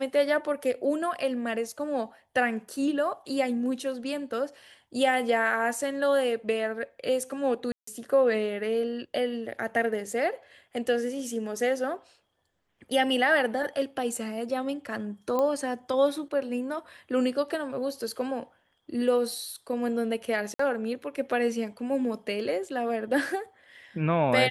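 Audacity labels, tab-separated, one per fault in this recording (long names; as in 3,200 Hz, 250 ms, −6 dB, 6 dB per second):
7.720000	7.870000	drop-out 154 ms
15.390000	15.390000	click −16 dBFS
20.540000	20.590000	drop-out 54 ms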